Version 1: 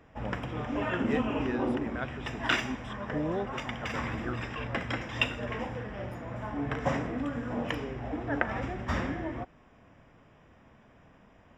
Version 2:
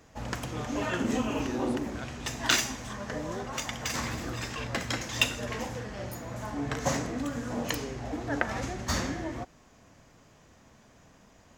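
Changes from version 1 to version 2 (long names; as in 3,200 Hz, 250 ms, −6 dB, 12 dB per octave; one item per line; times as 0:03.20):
speech −7.0 dB
master: remove Savitzky-Golay smoothing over 25 samples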